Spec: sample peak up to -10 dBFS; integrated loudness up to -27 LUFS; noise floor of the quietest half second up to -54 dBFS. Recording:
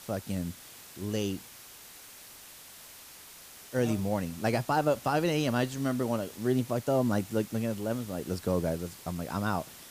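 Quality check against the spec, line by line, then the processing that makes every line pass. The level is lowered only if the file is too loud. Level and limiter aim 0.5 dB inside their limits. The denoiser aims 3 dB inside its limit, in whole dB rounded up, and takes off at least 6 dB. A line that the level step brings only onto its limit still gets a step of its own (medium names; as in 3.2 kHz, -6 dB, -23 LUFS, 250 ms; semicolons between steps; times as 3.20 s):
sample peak -16.0 dBFS: pass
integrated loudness -31.0 LUFS: pass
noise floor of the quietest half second -50 dBFS: fail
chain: noise reduction 7 dB, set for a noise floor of -50 dBFS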